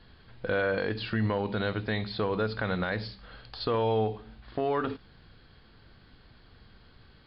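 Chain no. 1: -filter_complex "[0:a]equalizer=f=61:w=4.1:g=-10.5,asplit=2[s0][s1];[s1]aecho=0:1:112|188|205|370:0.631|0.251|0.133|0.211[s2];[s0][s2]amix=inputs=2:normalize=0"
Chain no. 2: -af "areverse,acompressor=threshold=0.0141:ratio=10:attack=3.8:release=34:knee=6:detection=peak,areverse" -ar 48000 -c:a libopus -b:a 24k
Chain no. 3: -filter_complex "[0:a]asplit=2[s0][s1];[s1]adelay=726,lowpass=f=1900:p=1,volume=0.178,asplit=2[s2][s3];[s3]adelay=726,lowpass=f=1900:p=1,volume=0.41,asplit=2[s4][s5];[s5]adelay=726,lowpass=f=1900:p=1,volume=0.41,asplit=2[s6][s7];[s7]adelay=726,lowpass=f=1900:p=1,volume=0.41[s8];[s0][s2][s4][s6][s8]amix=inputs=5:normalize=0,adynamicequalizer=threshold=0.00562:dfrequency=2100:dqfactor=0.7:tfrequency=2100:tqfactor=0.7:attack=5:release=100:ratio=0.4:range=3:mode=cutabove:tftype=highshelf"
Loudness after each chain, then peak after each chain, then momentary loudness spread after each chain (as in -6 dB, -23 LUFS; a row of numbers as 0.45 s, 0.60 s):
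-29.0 LUFS, -40.5 LUFS, -30.5 LUFS; -15.0 dBFS, -27.5 dBFS, -18.0 dBFS; 10 LU, 18 LU, 16 LU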